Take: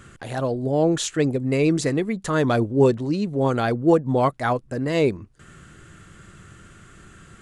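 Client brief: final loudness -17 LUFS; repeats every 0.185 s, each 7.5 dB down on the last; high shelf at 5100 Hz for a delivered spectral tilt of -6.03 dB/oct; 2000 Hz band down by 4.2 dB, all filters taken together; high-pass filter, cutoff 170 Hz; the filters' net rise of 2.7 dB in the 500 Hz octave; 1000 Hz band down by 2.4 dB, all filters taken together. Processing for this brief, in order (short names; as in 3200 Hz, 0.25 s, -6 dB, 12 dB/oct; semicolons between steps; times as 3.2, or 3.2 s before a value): HPF 170 Hz; bell 500 Hz +4.5 dB; bell 1000 Hz -4.5 dB; bell 2000 Hz -5 dB; high shelf 5100 Hz +5 dB; feedback echo 0.185 s, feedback 42%, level -7.5 dB; gain +3 dB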